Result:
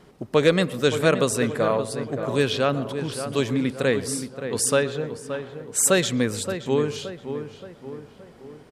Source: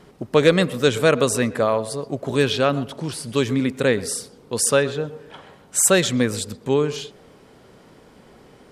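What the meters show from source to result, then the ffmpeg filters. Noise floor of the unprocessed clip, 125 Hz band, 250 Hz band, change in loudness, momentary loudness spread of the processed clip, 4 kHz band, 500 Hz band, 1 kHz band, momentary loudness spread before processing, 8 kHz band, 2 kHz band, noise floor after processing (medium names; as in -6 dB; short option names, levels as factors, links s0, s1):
-50 dBFS, -2.0 dB, -2.5 dB, -3.0 dB, 13 LU, -3.0 dB, -2.5 dB, -2.5 dB, 13 LU, -3.0 dB, -2.5 dB, -50 dBFS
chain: -filter_complex "[0:a]asplit=2[s0][s1];[s1]adelay=573,lowpass=f=2000:p=1,volume=0.355,asplit=2[s2][s3];[s3]adelay=573,lowpass=f=2000:p=1,volume=0.5,asplit=2[s4][s5];[s5]adelay=573,lowpass=f=2000:p=1,volume=0.5,asplit=2[s6][s7];[s7]adelay=573,lowpass=f=2000:p=1,volume=0.5,asplit=2[s8][s9];[s9]adelay=573,lowpass=f=2000:p=1,volume=0.5,asplit=2[s10][s11];[s11]adelay=573,lowpass=f=2000:p=1,volume=0.5[s12];[s0][s2][s4][s6][s8][s10][s12]amix=inputs=7:normalize=0,volume=0.708"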